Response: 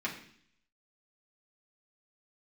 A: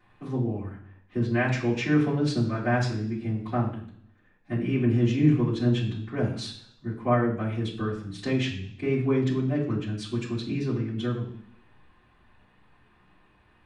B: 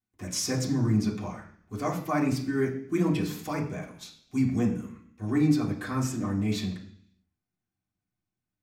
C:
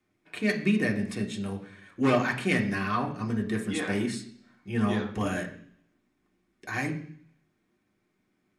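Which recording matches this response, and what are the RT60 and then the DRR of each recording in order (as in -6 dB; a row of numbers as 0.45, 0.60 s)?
B; 0.60, 0.60, 0.60 s; -15.0, -5.0, 0.0 dB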